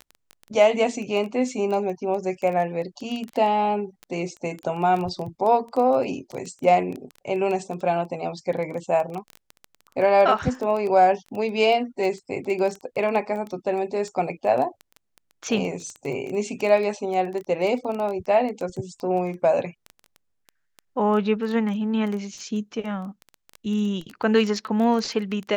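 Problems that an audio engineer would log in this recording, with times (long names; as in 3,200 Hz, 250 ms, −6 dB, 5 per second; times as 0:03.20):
surface crackle 11 per second −27 dBFS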